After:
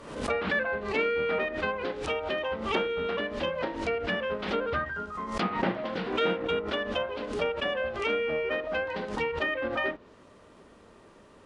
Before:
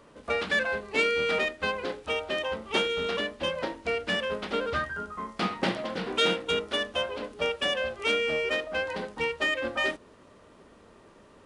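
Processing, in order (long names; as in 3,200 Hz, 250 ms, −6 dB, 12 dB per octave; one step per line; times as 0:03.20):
treble cut that deepens with the level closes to 1,900 Hz, closed at −25 dBFS
background raised ahead of every attack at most 72 dB per second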